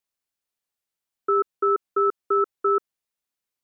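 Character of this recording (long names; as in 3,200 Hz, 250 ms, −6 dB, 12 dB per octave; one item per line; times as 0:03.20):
background noise floor −87 dBFS
spectral slope +3.0 dB per octave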